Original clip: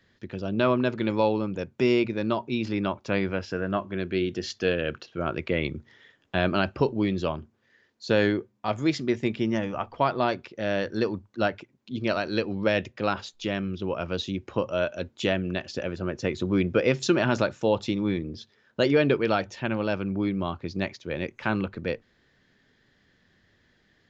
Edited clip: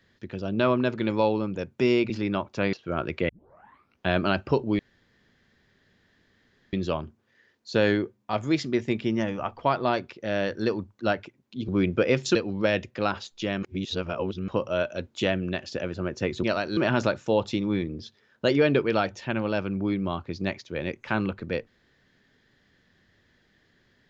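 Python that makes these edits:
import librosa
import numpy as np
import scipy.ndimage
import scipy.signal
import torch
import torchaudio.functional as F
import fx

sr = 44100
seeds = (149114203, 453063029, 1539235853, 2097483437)

y = fx.edit(x, sr, fx.cut(start_s=2.1, length_s=0.51),
    fx.cut(start_s=3.24, length_s=1.78),
    fx.tape_start(start_s=5.58, length_s=0.78),
    fx.insert_room_tone(at_s=7.08, length_s=1.94),
    fx.swap(start_s=12.03, length_s=0.34, other_s=16.45, other_length_s=0.67),
    fx.reverse_span(start_s=13.65, length_s=0.85), tone=tone)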